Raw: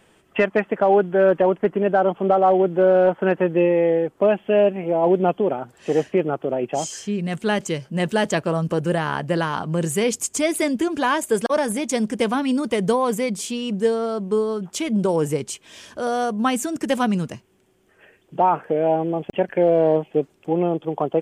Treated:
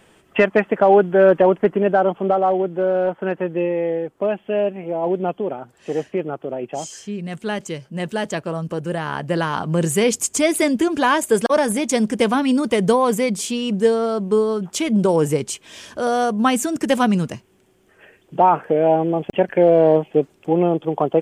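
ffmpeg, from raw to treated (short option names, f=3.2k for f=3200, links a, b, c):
-af "volume=10.5dB,afade=t=out:st=1.58:d=1.11:silence=0.446684,afade=t=in:st=8.9:d=0.89:silence=0.446684"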